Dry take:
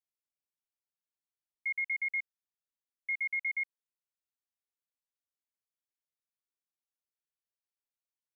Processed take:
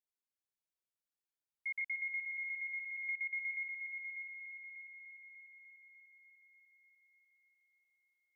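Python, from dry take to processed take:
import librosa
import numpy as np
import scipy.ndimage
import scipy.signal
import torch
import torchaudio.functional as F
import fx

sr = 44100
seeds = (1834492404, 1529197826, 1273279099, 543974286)

y = fx.echo_heads(x, sr, ms=297, heads='first and second', feedback_pct=63, wet_db=-7.5)
y = fx.band_squash(y, sr, depth_pct=70, at=(1.81, 3.54))
y = F.gain(torch.from_numpy(y), -5.5).numpy()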